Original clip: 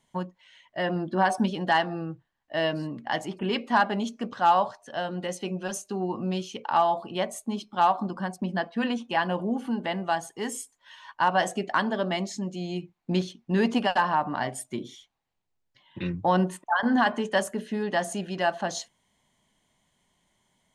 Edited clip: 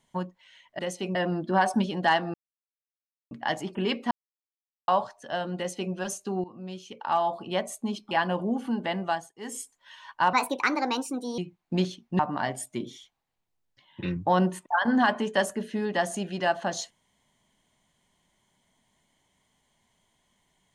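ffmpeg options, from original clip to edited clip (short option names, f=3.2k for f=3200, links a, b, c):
-filter_complex "[0:a]asplit=13[a][b][c][d][e][f][g][h][i][j][k][l][m];[a]atrim=end=0.792[n];[b]atrim=start=5.208:end=5.572[o];[c]atrim=start=0.788:end=1.98,asetpts=PTS-STARTPTS,afade=t=out:st=1.188:d=0.004:c=hsin[p];[d]atrim=start=1.98:end=2.95,asetpts=PTS-STARTPTS,volume=0[q];[e]atrim=start=2.95:end=3.75,asetpts=PTS-STARTPTS,afade=t=in:d=0.004:c=hsin,afade=t=out:st=0.796:d=0.004:c=hsin[r];[f]atrim=start=3.75:end=4.52,asetpts=PTS-STARTPTS,volume=0[s];[g]atrim=start=4.52:end=6.08,asetpts=PTS-STARTPTS,afade=t=in:d=0.004:c=hsin,afade=t=out:st=1.556:d=0.004:c=hsin:silence=0.141254[t];[h]atrim=start=6.08:end=7.752,asetpts=PTS-STARTPTS,afade=t=in:d=1.11:silence=0.141254[u];[i]atrim=start=9.108:end=10.34,asetpts=PTS-STARTPTS,afade=t=out:st=0.962:d=0.27:silence=0.105925[v];[j]atrim=start=10.34:end=11.334,asetpts=PTS-STARTPTS,afade=t=in:d=0.27:silence=0.105925[w];[k]atrim=start=11.33:end=12.75,asetpts=PTS-STARTPTS,asetrate=59535,aresample=44100[x];[l]atrim=start=12.746:end=13.562[y];[m]atrim=start=14.168[z];[n][o]acrossfade=d=0.004:c1=hsin:c2=hsin[aa];[p][q][r][s][t][u]concat=n=6:v=0:a=1[ab];[aa][ab]acrossfade=d=0.004:c1=hsin:c2=hsin[ac];[v][w]concat=n=2:v=0:a=1[ad];[ac][ad]acrossfade=d=0.004:c1=hsin:c2=hsin[ae];[ae][x]acrossfade=d=0.004:c1=hsin:c2=hsin[af];[af][y]acrossfade=d=0.004:c1=hsin:c2=hsin[ag];[ag][z]acrossfade=d=0.004:c1=hsin:c2=hsin"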